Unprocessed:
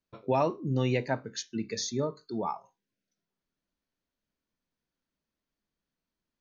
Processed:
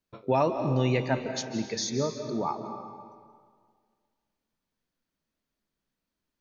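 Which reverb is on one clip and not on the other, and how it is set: algorithmic reverb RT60 1.9 s, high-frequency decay 0.8×, pre-delay 120 ms, DRR 7 dB; trim +2 dB

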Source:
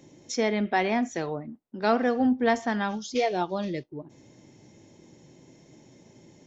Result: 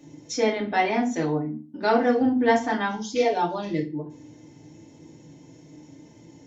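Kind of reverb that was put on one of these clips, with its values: FDN reverb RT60 0.34 s, low-frequency decay 1.5×, high-frequency decay 0.8×, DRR -3 dB; trim -2.5 dB

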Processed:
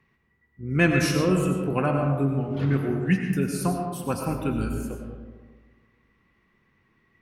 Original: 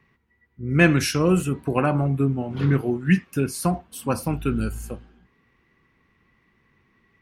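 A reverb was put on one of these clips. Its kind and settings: algorithmic reverb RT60 1.5 s, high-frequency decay 0.35×, pre-delay 60 ms, DRR 3 dB; trim -4 dB

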